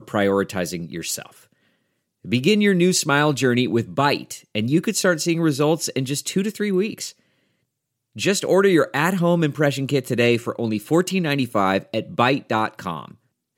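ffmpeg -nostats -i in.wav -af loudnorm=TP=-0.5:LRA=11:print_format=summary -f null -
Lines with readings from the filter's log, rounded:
Input Integrated:    -20.9 LUFS
Input True Peak:      -3.4 dBTP
Input LRA:             2.8 LU
Input Threshold:     -31.5 LUFS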